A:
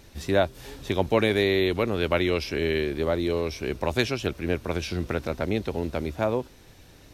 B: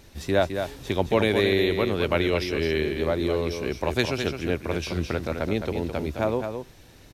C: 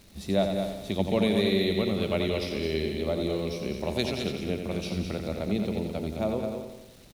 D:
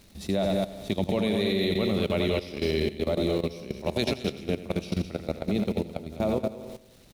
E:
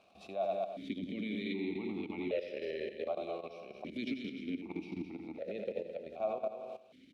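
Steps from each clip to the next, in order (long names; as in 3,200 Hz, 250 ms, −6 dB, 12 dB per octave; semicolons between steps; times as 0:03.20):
single-tap delay 213 ms −7 dB
thirty-one-band graphic EQ 200 Hz +12 dB, 630 Hz +4 dB, 1,000 Hz −5 dB, 1,600 Hz −11 dB, 4,000 Hz +6 dB, 10,000 Hz +7 dB; surface crackle 540 per second −39 dBFS; repeating echo 88 ms, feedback 56%, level −7 dB; level −6.5 dB
output level in coarse steps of 15 dB; level +5 dB
brickwall limiter −23.5 dBFS, peak gain reduction 10.5 dB; formant filter that steps through the vowels 1.3 Hz; level +7 dB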